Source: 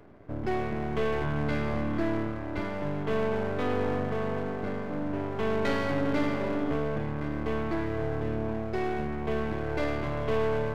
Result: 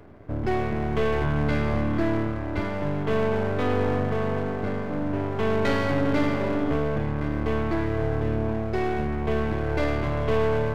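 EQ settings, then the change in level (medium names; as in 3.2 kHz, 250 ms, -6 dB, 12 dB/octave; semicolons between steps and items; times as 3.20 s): peaking EQ 81 Hz +5.5 dB 0.93 oct; +4.0 dB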